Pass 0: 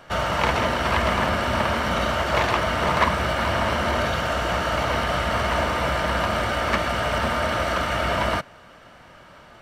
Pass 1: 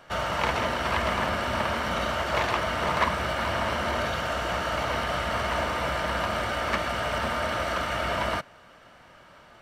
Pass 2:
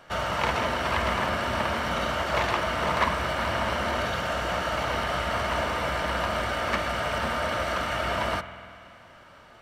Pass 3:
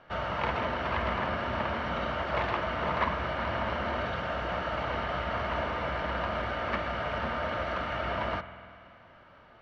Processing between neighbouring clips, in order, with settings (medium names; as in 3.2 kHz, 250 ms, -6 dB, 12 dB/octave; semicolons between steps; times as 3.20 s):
bass shelf 330 Hz -3 dB; trim -4 dB
reverberation RT60 2.5 s, pre-delay 48 ms, DRR 11.5 dB
distance through air 250 m; trim -3 dB